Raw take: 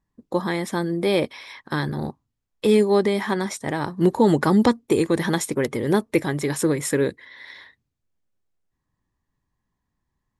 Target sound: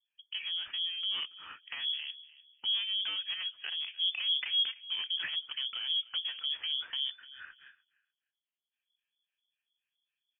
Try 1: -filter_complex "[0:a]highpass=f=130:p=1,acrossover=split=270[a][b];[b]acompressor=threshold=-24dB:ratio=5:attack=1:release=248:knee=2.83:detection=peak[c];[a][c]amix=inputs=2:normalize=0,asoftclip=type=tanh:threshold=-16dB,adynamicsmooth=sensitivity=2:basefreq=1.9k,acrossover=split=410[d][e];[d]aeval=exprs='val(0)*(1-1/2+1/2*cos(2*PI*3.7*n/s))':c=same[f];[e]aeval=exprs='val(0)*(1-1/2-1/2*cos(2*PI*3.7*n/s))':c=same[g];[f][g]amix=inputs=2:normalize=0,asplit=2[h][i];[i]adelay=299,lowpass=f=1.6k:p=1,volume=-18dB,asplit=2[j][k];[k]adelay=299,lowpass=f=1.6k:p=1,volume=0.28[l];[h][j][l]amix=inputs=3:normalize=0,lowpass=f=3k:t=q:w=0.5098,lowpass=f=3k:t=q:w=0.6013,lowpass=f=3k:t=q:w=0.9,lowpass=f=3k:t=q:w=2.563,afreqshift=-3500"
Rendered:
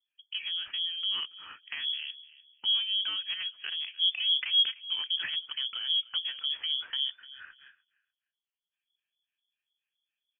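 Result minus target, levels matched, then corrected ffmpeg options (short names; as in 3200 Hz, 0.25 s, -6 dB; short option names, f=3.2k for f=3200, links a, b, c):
soft clip: distortion -9 dB
-filter_complex "[0:a]highpass=f=130:p=1,acrossover=split=270[a][b];[b]acompressor=threshold=-24dB:ratio=5:attack=1:release=248:knee=2.83:detection=peak[c];[a][c]amix=inputs=2:normalize=0,asoftclip=type=tanh:threshold=-23.5dB,adynamicsmooth=sensitivity=2:basefreq=1.9k,acrossover=split=410[d][e];[d]aeval=exprs='val(0)*(1-1/2+1/2*cos(2*PI*3.7*n/s))':c=same[f];[e]aeval=exprs='val(0)*(1-1/2-1/2*cos(2*PI*3.7*n/s))':c=same[g];[f][g]amix=inputs=2:normalize=0,asplit=2[h][i];[i]adelay=299,lowpass=f=1.6k:p=1,volume=-18dB,asplit=2[j][k];[k]adelay=299,lowpass=f=1.6k:p=1,volume=0.28[l];[h][j][l]amix=inputs=3:normalize=0,lowpass=f=3k:t=q:w=0.5098,lowpass=f=3k:t=q:w=0.6013,lowpass=f=3k:t=q:w=0.9,lowpass=f=3k:t=q:w=2.563,afreqshift=-3500"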